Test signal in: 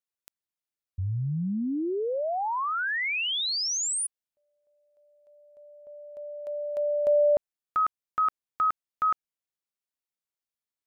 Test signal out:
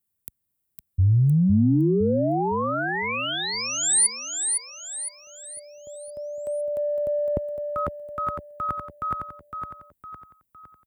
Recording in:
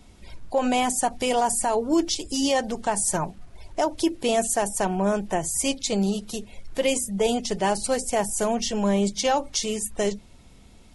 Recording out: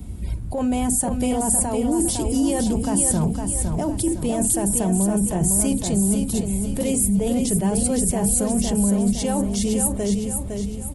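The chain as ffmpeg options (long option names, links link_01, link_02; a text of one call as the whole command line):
ffmpeg -i in.wav -filter_complex "[0:a]lowshelf=frequency=100:gain=11.5,acrossover=split=370[link_01][link_02];[link_01]acontrast=33[link_03];[link_03][link_02]amix=inputs=2:normalize=0,highpass=63,areverse,acompressor=threshold=-28dB:ratio=6:attack=3.6:release=41:knee=1:detection=peak,areverse,aexciter=amount=5:drive=5.1:freq=8000,lowshelf=frequency=450:gain=11.5,aecho=1:1:509|1018|1527|2036|2545:0.531|0.234|0.103|0.0452|0.0199" out.wav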